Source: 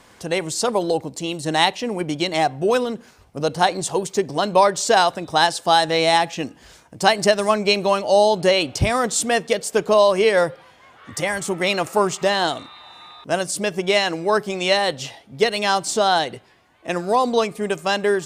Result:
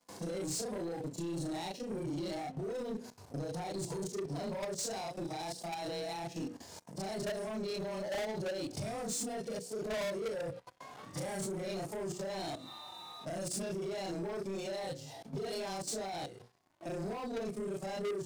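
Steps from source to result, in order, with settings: short-time spectra conjugated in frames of 83 ms; compression 2:1, threshold -37 dBFS, peak gain reduction 13 dB; harmonic-percussive split percussive -18 dB; high-order bell 2.1 kHz -9.5 dB; level held to a coarse grid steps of 15 dB; high-pass 97 Hz 24 dB/octave; saturation -34.5 dBFS, distortion -8 dB; hum notches 60/120/180/240/300/360/420/480/540 Hz; waveshaping leveller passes 3; dynamic bell 980 Hz, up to -6 dB, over -50 dBFS, Q 1.2; trim +1 dB

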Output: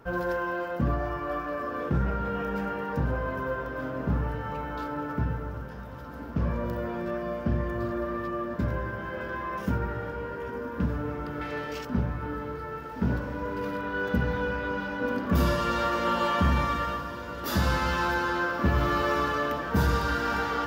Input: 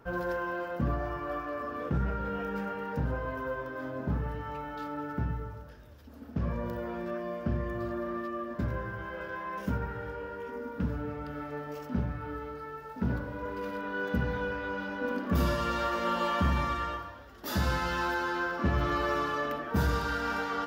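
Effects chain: 11.41–11.85 s: frequency weighting D; on a send: echo that smears into a reverb 1468 ms, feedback 69%, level -13 dB; on the sum: trim +3.5 dB

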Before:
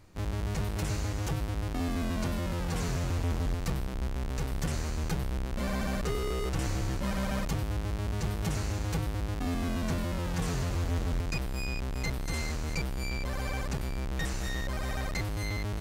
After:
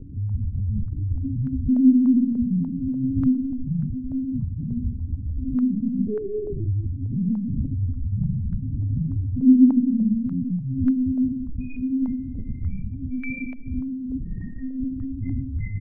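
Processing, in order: high-pass 68 Hz 12 dB/octave; peaking EQ 250 Hz +11 dB 0.27 oct; de-hum 242.9 Hz, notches 27; granulator 100 ms, pitch spread up and down by 0 st; early reflections 15 ms -13 dB, 39 ms -8 dB; loudest bins only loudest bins 2; reverberation RT60 0.45 s, pre-delay 3 ms, DRR -10 dB; hum 60 Hz, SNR 16 dB; LPC vocoder at 8 kHz pitch kept; step-sequenced low-pass 3.4 Hz 440–1500 Hz

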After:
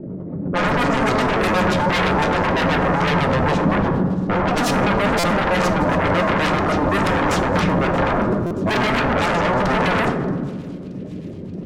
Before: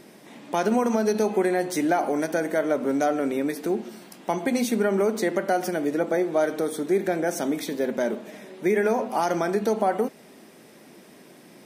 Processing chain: pitch shift switched off and on -9 st, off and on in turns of 64 ms; level-controlled noise filter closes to 380 Hz, open at -18.5 dBFS; transient shaper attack -6 dB, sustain +10 dB; rotary cabinet horn 8 Hz; saturation -21.5 dBFS, distortion -15 dB; tilt shelf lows +4.5 dB, about 1.3 kHz; sine folder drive 12 dB, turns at -17 dBFS; feedback echo behind a high-pass 627 ms, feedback 69%, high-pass 3.8 kHz, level -19.5 dB; reverberation RT60 1.5 s, pre-delay 3 ms, DRR 4.5 dB; buffer glitch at 5.19/8.46 s, samples 256, times 7

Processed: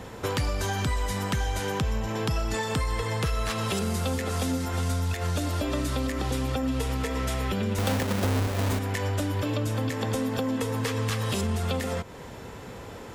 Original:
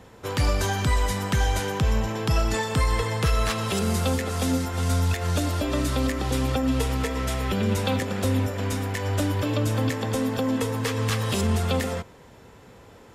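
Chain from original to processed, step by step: 7.78–8.79 s: square wave that keeps the level; compression 4:1, threshold -35 dBFS, peak gain reduction 15.5 dB; trim +8 dB

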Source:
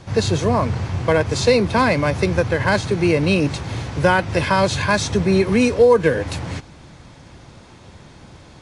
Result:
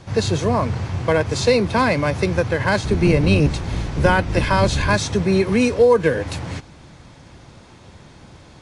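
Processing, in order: 2.84–4.97 s: octave divider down 1 oct, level +2 dB; trim -1 dB

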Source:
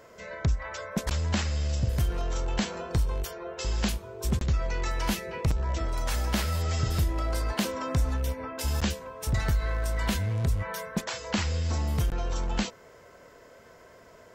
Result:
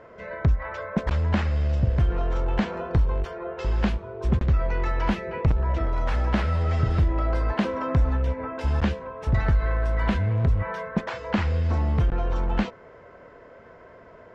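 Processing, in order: low-pass 2 kHz 12 dB/octave; trim +5 dB

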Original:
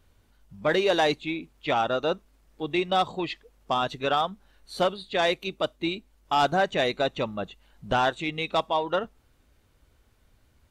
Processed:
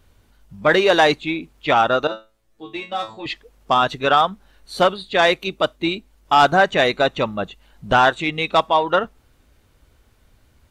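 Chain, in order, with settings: dynamic bell 1.4 kHz, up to +5 dB, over -36 dBFS, Q 1; 2.07–3.26 s: feedback comb 110 Hz, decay 0.25 s, harmonics all, mix 100%; trim +6.5 dB

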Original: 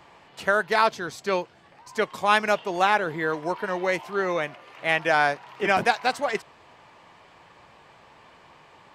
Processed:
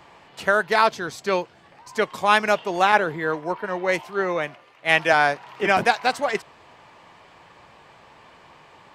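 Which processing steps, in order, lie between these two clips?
2.92–5.13 s: three bands expanded up and down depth 70%; trim +2.5 dB

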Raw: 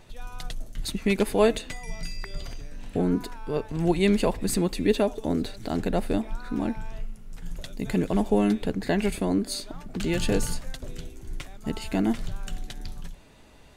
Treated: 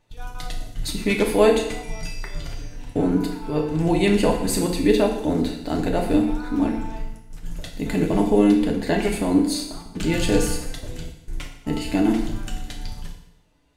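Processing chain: gate -36 dBFS, range -17 dB; FDN reverb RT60 0.83 s, low-frequency decay 1×, high-frequency decay 0.95×, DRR 0.5 dB; trim +2 dB

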